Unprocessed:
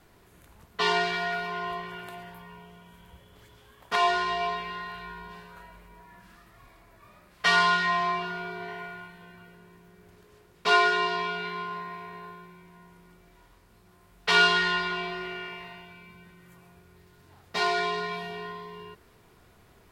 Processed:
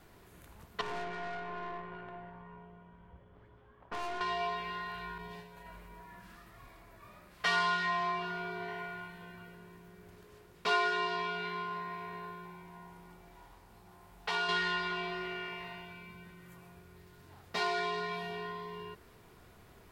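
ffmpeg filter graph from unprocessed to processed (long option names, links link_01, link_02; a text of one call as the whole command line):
ffmpeg -i in.wav -filter_complex "[0:a]asettb=1/sr,asplit=3[link_01][link_02][link_03];[link_01]atrim=end=0.814[link_04];[link_02]atrim=start=0.81:end=4.21,asetpts=PTS-STARTPTS,afade=type=in:duration=0.004:curve=qsin,afade=type=out:start_time=3.396:duration=0.004:curve=qsin,lowpass=1400,aeval=exprs='(tanh(44.7*val(0)+0.65)-tanh(0.65))/44.7':channel_layout=same[link_05];[link_03]atrim=start=4.206[link_06];[link_04][link_05]acrossfade=duration=0.004:curve1=hsin:curve2=qsin[link_07];[link_07][link_06]acrossfade=duration=0.004:curve1=qsin:curve2=hsin,asettb=1/sr,asplit=3[link_08][link_09][link_10];[link_08]atrim=end=5.184[link_11];[link_09]atrim=start=5.18:end=5.66,asetpts=PTS-STARTPTS,afade=type=in:duration=0.004:curve=qsin,afade=type=out:start_time=0.476:duration=0.004:curve=qsin,agate=range=-33dB:threshold=-45dB:ratio=3:release=100:detection=peak,equalizer=frequency=1300:width_type=o:width=0.4:gain=-14,aecho=1:1:7:0.39,atrim=end_sample=21168[link_12];[link_10]atrim=start=5.656[link_13];[link_11][link_12]acrossfade=duration=0.004:curve1=hsin:curve2=qsin[link_14];[link_14][link_13]acrossfade=duration=0.004:curve1=qsin:curve2=hsin,asettb=1/sr,asplit=3[link_15][link_16][link_17];[link_15]atrim=end=12.454[link_18];[link_16]atrim=start=12.45:end=14.49,asetpts=PTS-STARTPTS,afade=type=in:duration=0.004:curve=qsin,afade=type=out:start_time=2.036:duration=0.004:curve=qsin,equalizer=frequency=830:width=3.5:gain=10,acompressor=threshold=-38dB:ratio=1.5:attack=3.2:release=140:knee=1:detection=peak[link_19];[link_17]atrim=start=14.486[link_20];[link_18][link_19]acrossfade=duration=0.004:curve1=hsin:curve2=qsin[link_21];[link_21][link_20]acrossfade=duration=0.004:curve1=qsin:curve2=hsin,lowpass=frequency=2600:poles=1,aemphasis=mode=production:type=50kf,acompressor=threshold=-41dB:ratio=1.5" out.wav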